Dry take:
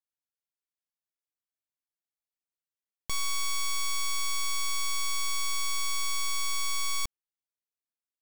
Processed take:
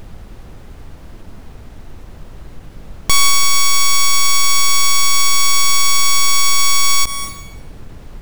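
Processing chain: added noise brown -55 dBFS; on a send at -15 dB: reverb RT60 0.90 s, pre-delay 0.178 s; on the sum: maximiser +29 dB; ending taper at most 460 dB/s; gain -6 dB

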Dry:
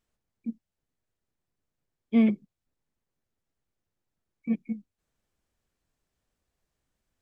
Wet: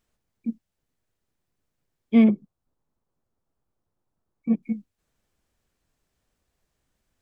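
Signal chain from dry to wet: 2.24–4.63 resonant high shelf 1500 Hz -8 dB, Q 1.5; gain +5 dB

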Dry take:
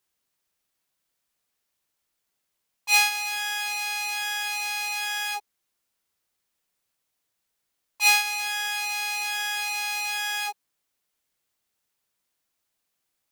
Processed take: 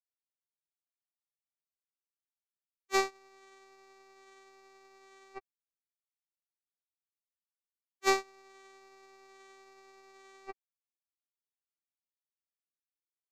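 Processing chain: LPF 2200 Hz 12 dB/oct; comb 4.9 ms, depth 42%; harmoniser -3 st -6 dB; vocoder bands 4, saw 387 Hz; power-law curve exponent 3

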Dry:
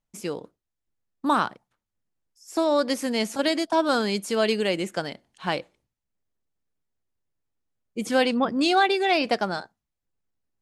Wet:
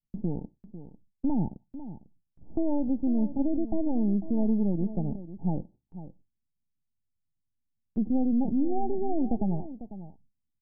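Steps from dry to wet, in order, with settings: half-wave gain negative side -12 dB; spectral gate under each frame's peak -30 dB strong; Chebyshev low-pass 890 Hz, order 10; resonant low shelf 340 Hz +12 dB, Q 1.5; in parallel at +2 dB: limiter -16 dBFS, peak gain reduction 9 dB; on the sum: compressor 1.5:1, threshold -45 dBFS, peak gain reduction 13 dB; echo 0.498 s -13.5 dB; gate with hold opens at -50 dBFS

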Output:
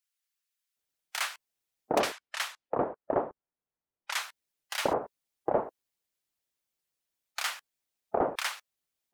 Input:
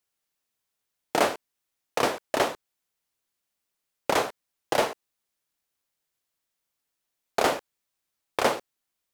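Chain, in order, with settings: 2–4.21 low-pass opened by the level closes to 1200 Hz, open at -21.5 dBFS; harmonic-percussive split percussive +7 dB; bands offset in time highs, lows 0.76 s, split 1200 Hz; gain -8 dB

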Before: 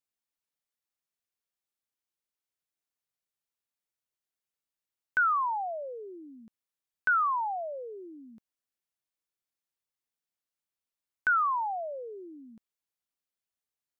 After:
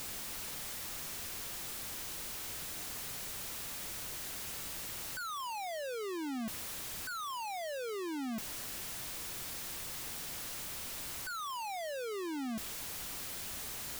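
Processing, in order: infinite clipping; low shelf 190 Hz +8 dB; gain -3.5 dB

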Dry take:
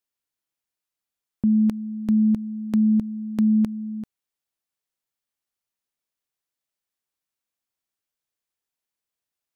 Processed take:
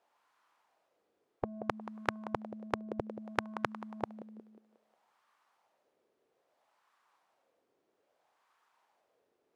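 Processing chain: dynamic EQ 130 Hz, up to +7 dB, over -36 dBFS, Q 1.1; compressor 1.5:1, threshold -27 dBFS, peak gain reduction 5 dB; thinning echo 0.18 s, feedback 54%, high-pass 320 Hz, level -19.5 dB; wah 0.61 Hz 410–1100 Hz, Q 2.7; spectral compressor 10:1; gain +14 dB

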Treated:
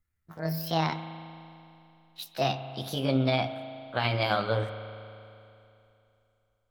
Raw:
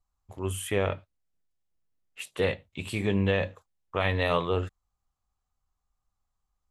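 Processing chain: gliding pitch shift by +9.5 st ending unshifted; spring tank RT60 2.8 s, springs 37 ms, chirp 25 ms, DRR 9.5 dB

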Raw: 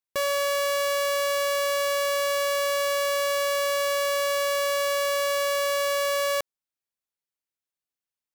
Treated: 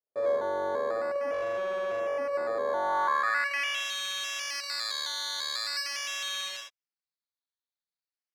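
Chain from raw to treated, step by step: non-linear reverb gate 0.3 s flat, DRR -7.5 dB; decimation with a swept rate 13×, swing 60% 0.43 Hz; band-pass sweep 500 Hz -> 4300 Hz, 2.63–3.92; 1.33–2 overdrive pedal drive 8 dB, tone 7500 Hz, clips at -21 dBFS; gain -5 dB

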